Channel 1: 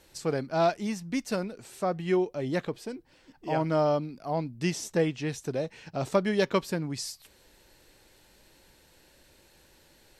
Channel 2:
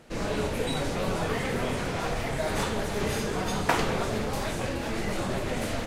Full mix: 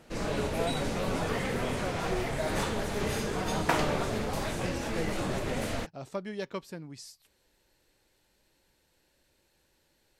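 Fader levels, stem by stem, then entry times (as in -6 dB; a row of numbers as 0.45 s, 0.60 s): -11.0 dB, -2.5 dB; 0.00 s, 0.00 s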